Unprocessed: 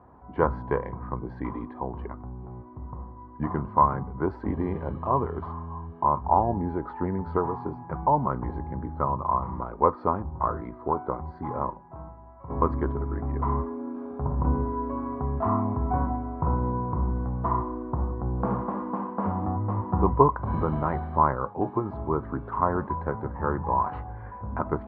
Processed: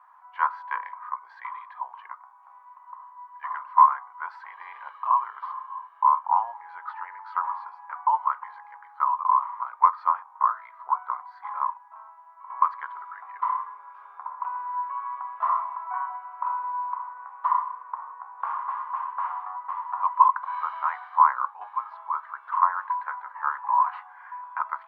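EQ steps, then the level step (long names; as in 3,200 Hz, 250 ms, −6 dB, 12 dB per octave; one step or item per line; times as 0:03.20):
elliptic high-pass filter 1,000 Hz, stop band 80 dB
+6.0 dB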